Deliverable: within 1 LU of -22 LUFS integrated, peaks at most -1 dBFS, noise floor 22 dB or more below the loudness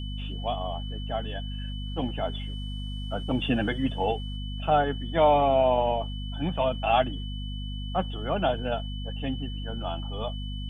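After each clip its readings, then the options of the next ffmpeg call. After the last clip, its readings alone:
hum 50 Hz; harmonics up to 250 Hz; hum level -31 dBFS; steady tone 3000 Hz; tone level -42 dBFS; loudness -28.5 LUFS; peak -10.0 dBFS; loudness target -22.0 LUFS
-> -af "bandreject=f=50:t=h:w=6,bandreject=f=100:t=h:w=6,bandreject=f=150:t=h:w=6,bandreject=f=200:t=h:w=6,bandreject=f=250:t=h:w=6"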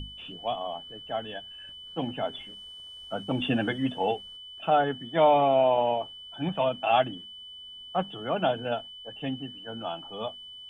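hum none; steady tone 3000 Hz; tone level -42 dBFS
-> -af "bandreject=f=3k:w=30"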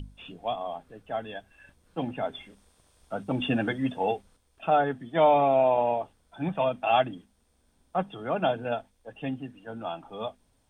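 steady tone none; loudness -28.5 LUFS; peak -10.5 dBFS; loudness target -22.0 LUFS
-> -af "volume=6.5dB"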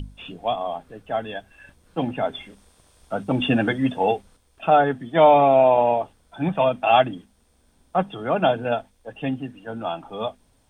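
loudness -22.0 LUFS; peak -4.0 dBFS; noise floor -62 dBFS

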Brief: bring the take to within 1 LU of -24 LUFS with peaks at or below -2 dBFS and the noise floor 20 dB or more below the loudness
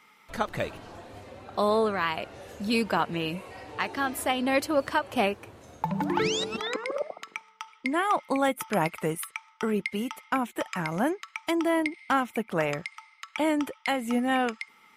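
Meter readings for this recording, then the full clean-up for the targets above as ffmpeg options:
loudness -28.5 LUFS; peak -12.5 dBFS; loudness target -24.0 LUFS
-> -af "volume=4.5dB"

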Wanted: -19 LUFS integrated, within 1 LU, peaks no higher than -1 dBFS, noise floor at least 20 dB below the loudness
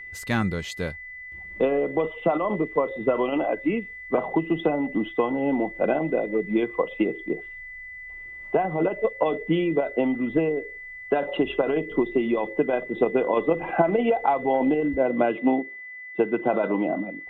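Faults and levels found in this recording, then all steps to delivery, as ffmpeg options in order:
steady tone 2000 Hz; tone level -37 dBFS; loudness -25.0 LUFS; peak -8.0 dBFS; loudness target -19.0 LUFS
-> -af "bandreject=f=2k:w=30"
-af "volume=6dB"

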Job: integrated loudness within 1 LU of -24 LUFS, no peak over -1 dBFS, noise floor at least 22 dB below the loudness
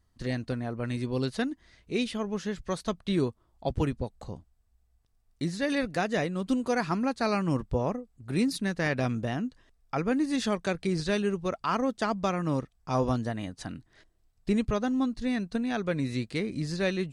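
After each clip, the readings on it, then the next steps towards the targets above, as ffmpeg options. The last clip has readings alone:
loudness -30.5 LUFS; peak -15.0 dBFS; loudness target -24.0 LUFS
-> -af "volume=6.5dB"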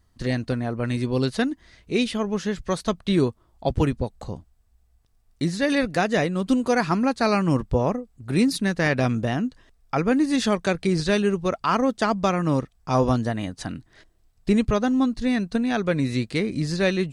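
loudness -24.0 LUFS; peak -8.5 dBFS; noise floor -63 dBFS

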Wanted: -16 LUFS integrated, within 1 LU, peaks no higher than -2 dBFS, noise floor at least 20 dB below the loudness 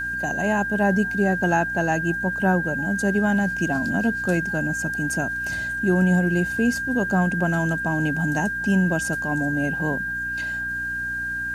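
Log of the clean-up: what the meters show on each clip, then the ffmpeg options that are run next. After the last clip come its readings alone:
hum 60 Hz; harmonics up to 300 Hz; hum level -40 dBFS; steady tone 1600 Hz; tone level -25 dBFS; loudness -22.5 LUFS; peak -8.0 dBFS; loudness target -16.0 LUFS
-> -af "bandreject=f=60:t=h:w=4,bandreject=f=120:t=h:w=4,bandreject=f=180:t=h:w=4,bandreject=f=240:t=h:w=4,bandreject=f=300:t=h:w=4"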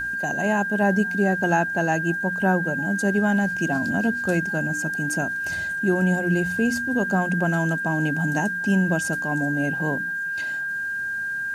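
hum none; steady tone 1600 Hz; tone level -25 dBFS
-> -af "bandreject=f=1.6k:w=30"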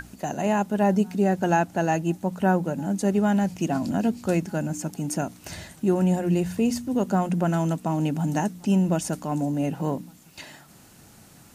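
steady tone none; loudness -25.0 LUFS; peak -9.0 dBFS; loudness target -16.0 LUFS
-> -af "volume=9dB,alimiter=limit=-2dB:level=0:latency=1"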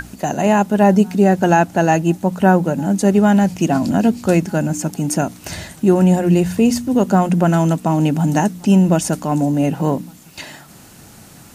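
loudness -16.0 LUFS; peak -2.0 dBFS; noise floor -43 dBFS

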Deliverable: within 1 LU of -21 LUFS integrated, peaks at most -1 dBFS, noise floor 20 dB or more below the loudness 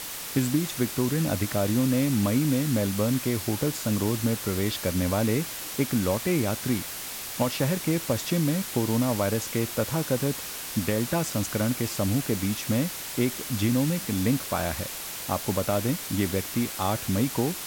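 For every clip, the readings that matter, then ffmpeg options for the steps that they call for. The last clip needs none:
noise floor -36 dBFS; noise floor target -47 dBFS; loudness -26.5 LUFS; peak -11.5 dBFS; loudness target -21.0 LUFS
-> -af "afftdn=nr=11:nf=-36"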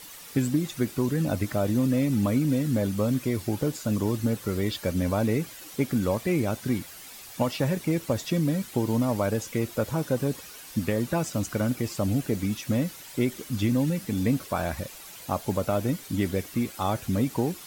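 noise floor -45 dBFS; noise floor target -48 dBFS
-> -af "afftdn=nr=6:nf=-45"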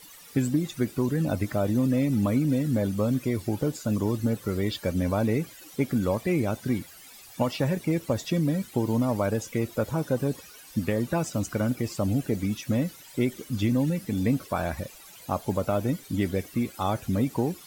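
noise floor -49 dBFS; loudness -27.5 LUFS; peak -12.5 dBFS; loudness target -21.0 LUFS
-> -af "volume=6.5dB"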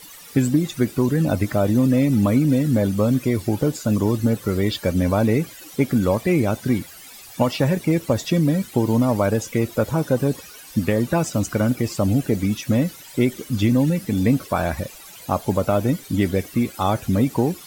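loudness -21.0 LUFS; peak -6.0 dBFS; noise floor -42 dBFS

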